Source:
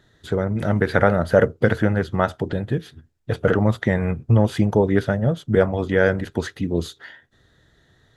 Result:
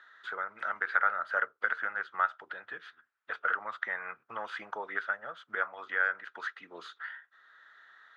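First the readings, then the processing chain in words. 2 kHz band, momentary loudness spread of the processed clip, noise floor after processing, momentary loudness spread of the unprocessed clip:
−3.0 dB, 14 LU, −74 dBFS, 9 LU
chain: four-pole ladder band-pass 1,500 Hz, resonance 60%
multiband upward and downward compressor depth 40%
level +3 dB

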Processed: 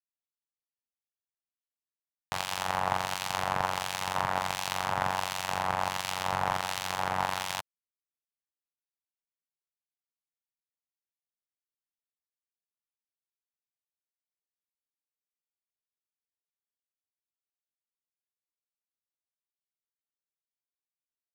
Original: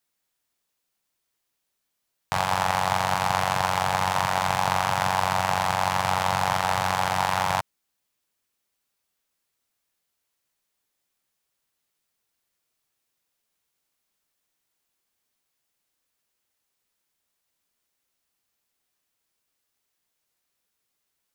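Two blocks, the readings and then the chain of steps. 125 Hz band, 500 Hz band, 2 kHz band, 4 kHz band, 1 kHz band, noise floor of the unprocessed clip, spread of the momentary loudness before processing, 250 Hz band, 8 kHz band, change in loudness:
−10.0 dB, −7.0 dB, −6.5 dB, −4.5 dB, −7.5 dB, −79 dBFS, 2 LU, −7.5 dB, −4.5 dB, −7.0 dB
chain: power curve on the samples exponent 1.4
two-band tremolo in antiphase 1.4 Hz, depth 70%, crossover 2,100 Hz

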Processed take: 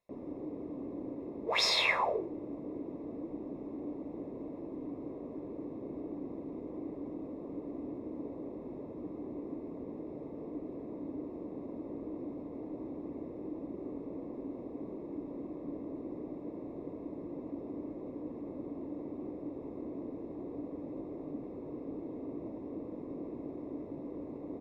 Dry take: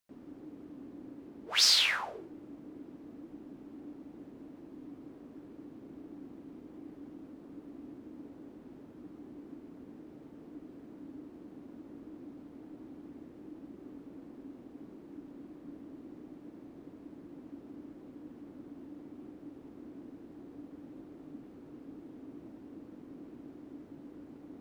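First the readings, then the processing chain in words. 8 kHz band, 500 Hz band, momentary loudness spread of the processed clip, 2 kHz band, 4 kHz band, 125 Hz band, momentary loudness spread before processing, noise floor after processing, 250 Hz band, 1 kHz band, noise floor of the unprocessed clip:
can't be measured, +11.5 dB, 2 LU, +0.5 dB, −5.5 dB, +7.0 dB, 2 LU, −46 dBFS, +6.5 dB, +7.0 dB, −54 dBFS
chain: moving average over 29 samples
low-shelf EQ 320 Hz −11 dB
comb filter 1.9 ms, depth 35%
level +16 dB

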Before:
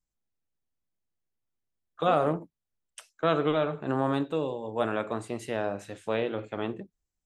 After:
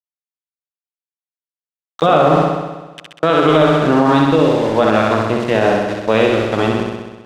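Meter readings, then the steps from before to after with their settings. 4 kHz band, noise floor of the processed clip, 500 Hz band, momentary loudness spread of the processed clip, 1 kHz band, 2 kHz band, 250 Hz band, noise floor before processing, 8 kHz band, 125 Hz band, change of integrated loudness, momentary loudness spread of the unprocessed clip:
+17.0 dB, below −85 dBFS, +15.0 dB, 9 LU, +15.5 dB, +17.0 dB, +16.5 dB, below −85 dBFS, can't be measured, +16.5 dB, +15.5 dB, 9 LU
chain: high shelf with overshoot 5,000 Hz −6.5 dB, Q 1.5
centre clipping without the shift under −39 dBFS
high-frequency loss of the air 70 metres
on a send: flutter between parallel walls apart 11 metres, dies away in 1.2 s
on the sum: boost into a limiter +16.5 dB
level −1 dB

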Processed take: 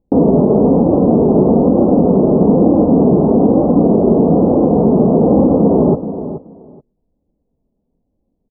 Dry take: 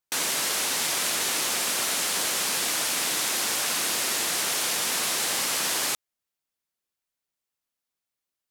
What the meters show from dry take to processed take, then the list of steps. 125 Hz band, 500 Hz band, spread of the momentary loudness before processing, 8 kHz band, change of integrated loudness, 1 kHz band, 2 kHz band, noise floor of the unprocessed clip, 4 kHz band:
+34.0 dB, +26.5 dB, 0 LU, below −40 dB, +12.5 dB, +11.5 dB, below −30 dB, below −85 dBFS, below −40 dB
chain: Gaussian smoothing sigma 16 samples
low-shelf EQ 110 Hz −10 dB
flanger 1.1 Hz, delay 3.6 ms, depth 1.3 ms, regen −29%
spectral tilt −4 dB per octave
repeating echo 427 ms, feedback 17%, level −12.5 dB
boost into a limiter +33.5 dB
level −1 dB

